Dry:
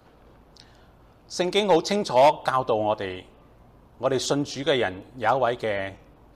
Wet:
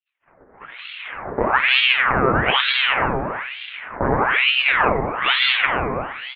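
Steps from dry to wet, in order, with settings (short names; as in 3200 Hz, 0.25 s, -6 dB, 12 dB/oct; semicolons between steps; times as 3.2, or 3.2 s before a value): recorder AGC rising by 11 dB/s; sample leveller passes 3; elliptic band-pass 100–1400 Hz, stop band 40 dB; monotone LPC vocoder at 8 kHz 130 Hz; expander -38 dBFS; air absorption 420 m; plate-style reverb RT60 1.6 s, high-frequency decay 0.95×, DRR -0.5 dB; dynamic EQ 560 Hz, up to -6 dB, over -31 dBFS, Q 2; frequency-shifting echo 0.271 s, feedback 57%, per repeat +64 Hz, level -23 dB; ring modulator with a swept carrier 1600 Hz, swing 75%, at 1.1 Hz; gain +2.5 dB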